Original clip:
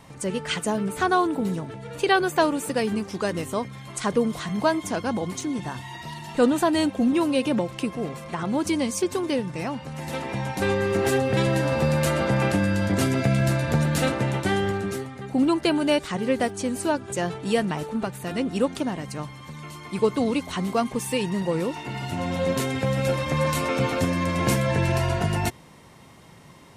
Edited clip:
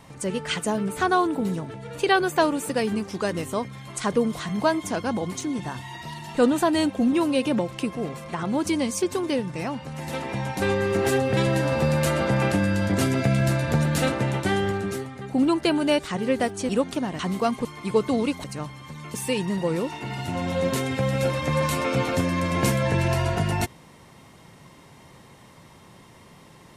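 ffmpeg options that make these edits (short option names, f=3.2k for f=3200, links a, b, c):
-filter_complex "[0:a]asplit=6[a][b][c][d][e][f];[a]atrim=end=16.692[g];[b]atrim=start=18.528:end=19.032[h];[c]atrim=start=20.518:end=20.982[i];[d]atrim=start=19.728:end=20.522[j];[e]atrim=start=19.028:end=19.732[k];[f]atrim=start=20.978[l];[g][h]acrossfade=d=0.004:c1=hsin:c2=hsin[m];[m][i]acrossfade=d=0.004:c1=hsin:c2=hsin[n];[n][j]acrossfade=d=0.004:c1=hsin:c2=hsin[o];[o][k]acrossfade=d=0.004:c1=hsin:c2=hsin[p];[p][l]acrossfade=d=0.004:c1=hsin:c2=hsin"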